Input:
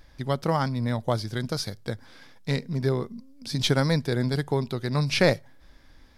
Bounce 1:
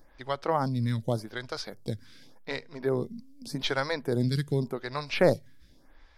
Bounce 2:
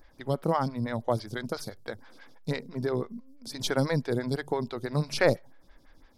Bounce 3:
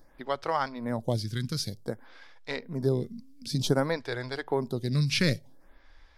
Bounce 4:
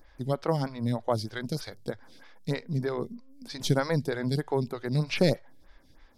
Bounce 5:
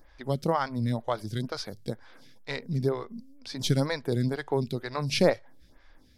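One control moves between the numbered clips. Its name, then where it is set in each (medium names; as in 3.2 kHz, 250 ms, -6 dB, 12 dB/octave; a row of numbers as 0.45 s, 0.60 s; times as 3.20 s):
lamp-driven phase shifter, rate: 0.86 Hz, 6 Hz, 0.54 Hz, 3.2 Hz, 2.1 Hz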